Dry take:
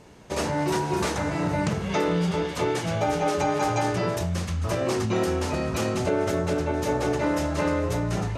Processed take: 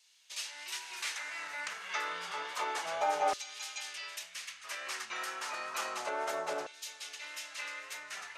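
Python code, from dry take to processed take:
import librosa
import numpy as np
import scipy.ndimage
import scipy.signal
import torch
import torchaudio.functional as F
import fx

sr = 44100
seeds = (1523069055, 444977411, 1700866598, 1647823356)

y = fx.wow_flutter(x, sr, seeds[0], rate_hz=2.1, depth_cents=23.0)
y = fx.filter_lfo_highpass(y, sr, shape='saw_down', hz=0.3, low_hz=720.0, high_hz=3800.0, q=1.5)
y = y * librosa.db_to_amplitude(-6.0)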